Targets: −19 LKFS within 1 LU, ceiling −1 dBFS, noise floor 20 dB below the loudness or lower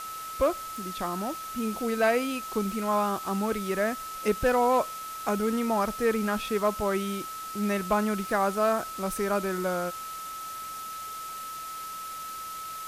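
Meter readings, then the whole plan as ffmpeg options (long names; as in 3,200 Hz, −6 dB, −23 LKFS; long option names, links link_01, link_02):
interfering tone 1,300 Hz; level of the tone −36 dBFS; background noise floor −38 dBFS; target noise floor −49 dBFS; integrated loudness −29.0 LKFS; sample peak −14.5 dBFS; target loudness −19.0 LKFS
→ -af "bandreject=frequency=1300:width=30"
-af "afftdn=noise_reduction=11:noise_floor=-38"
-af "volume=10dB"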